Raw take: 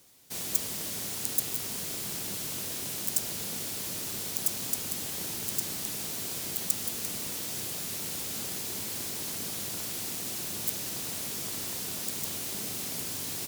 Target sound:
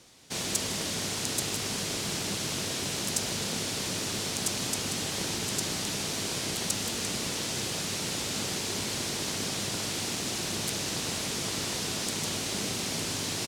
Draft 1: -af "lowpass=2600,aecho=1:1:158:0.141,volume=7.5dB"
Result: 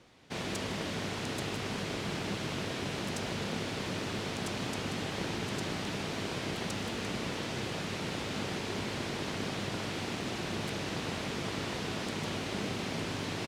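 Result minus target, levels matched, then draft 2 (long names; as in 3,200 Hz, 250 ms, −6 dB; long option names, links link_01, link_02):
8,000 Hz band −9.5 dB
-af "lowpass=6700,aecho=1:1:158:0.141,volume=7.5dB"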